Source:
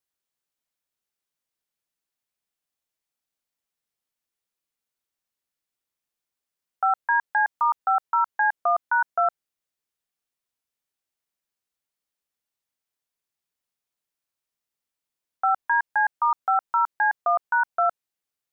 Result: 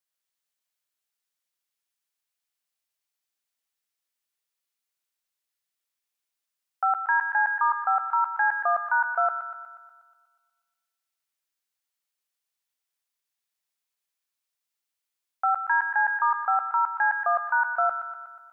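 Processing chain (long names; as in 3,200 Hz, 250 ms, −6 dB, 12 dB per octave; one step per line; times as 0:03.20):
low-shelf EQ 490 Hz −10 dB
on a send: delay with a high-pass on its return 121 ms, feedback 58%, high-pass 1,500 Hz, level −3.5 dB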